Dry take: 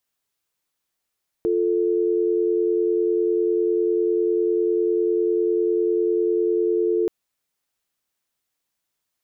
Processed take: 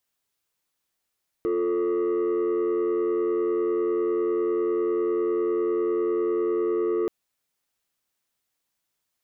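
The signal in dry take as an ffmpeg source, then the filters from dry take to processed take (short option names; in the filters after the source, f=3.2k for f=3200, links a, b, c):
-f lavfi -i "aevalsrc='0.0944*(sin(2*PI*350*t)+sin(2*PI*440*t))':d=5.63:s=44100"
-af "asoftclip=type=tanh:threshold=-20.5dB"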